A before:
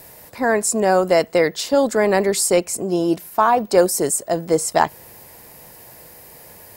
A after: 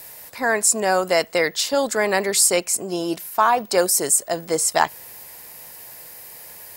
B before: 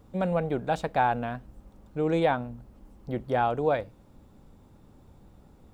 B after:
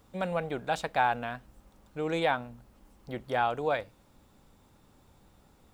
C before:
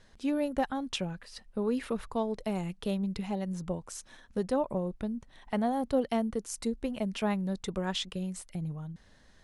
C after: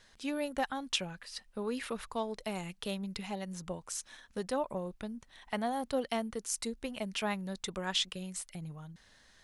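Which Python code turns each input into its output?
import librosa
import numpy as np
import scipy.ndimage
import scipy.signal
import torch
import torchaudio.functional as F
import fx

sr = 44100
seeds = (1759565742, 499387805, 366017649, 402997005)

y = fx.tilt_shelf(x, sr, db=-6.0, hz=830.0)
y = y * librosa.db_to_amplitude(-2.0)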